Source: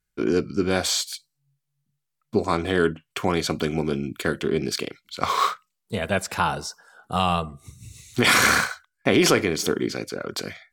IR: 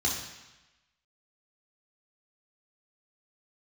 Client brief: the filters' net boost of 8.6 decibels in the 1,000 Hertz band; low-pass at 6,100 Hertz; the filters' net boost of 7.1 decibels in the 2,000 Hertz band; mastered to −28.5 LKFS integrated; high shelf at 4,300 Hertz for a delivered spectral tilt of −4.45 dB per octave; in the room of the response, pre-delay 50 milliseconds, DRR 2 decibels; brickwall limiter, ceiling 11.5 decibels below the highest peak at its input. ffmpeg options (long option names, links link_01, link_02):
-filter_complex "[0:a]lowpass=6100,equalizer=frequency=1000:width_type=o:gain=9,equalizer=frequency=2000:width_type=o:gain=6.5,highshelf=frequency=4300:gain=-3.5,alimiter=limit=-9.5dB:level=0:latency=1,asplit=2[link_01][link_02];[1:a]atrim=start_sample=2205,adelay=50[link_03];[link_02][link_03]afir=irnorm=-1:irlink=0,volume=-10.5dB[link_04];[link_01][link_04]amix=inputs=2:normalize=0,volume=-8dB"